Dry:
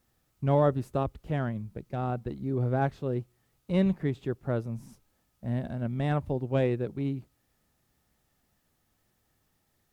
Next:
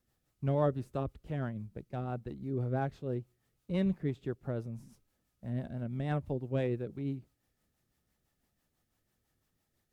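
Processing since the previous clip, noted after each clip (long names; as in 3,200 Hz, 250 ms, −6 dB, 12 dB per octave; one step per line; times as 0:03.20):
rotating-speaker cabinet horn 6 Hz
level −4 dB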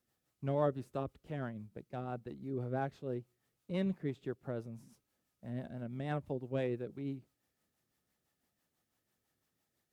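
high-pass filter 190 Hz 6 dB per octave
level −1.5 dB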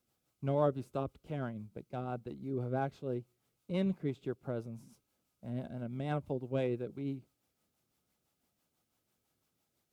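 notch filter 1,800 Hz, Q 5.7
level +2 dB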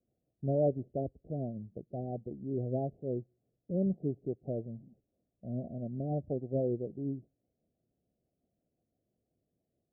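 Butterworth low-pass 730 Hz 96 dB per octave
level +2 dB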